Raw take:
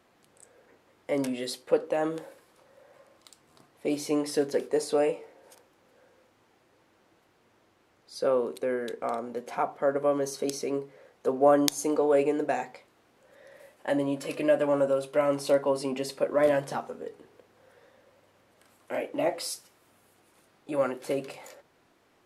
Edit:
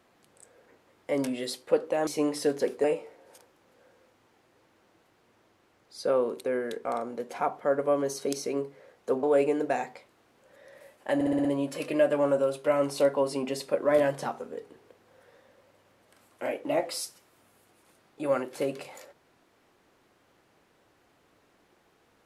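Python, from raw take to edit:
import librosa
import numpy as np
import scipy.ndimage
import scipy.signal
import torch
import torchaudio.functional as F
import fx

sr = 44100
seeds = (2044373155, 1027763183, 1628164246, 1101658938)

y = fx.edit(x, sr, fx.cut(start_s=2.07, length_s=1.92),
    fx.cut(start_s=4.76, length_s=0.25),
    fx.cut(start_s=11.4, length_s=0.62),
    fx.stutter(start_s=13.94, slice_s=0.06, count=6), tone=tone)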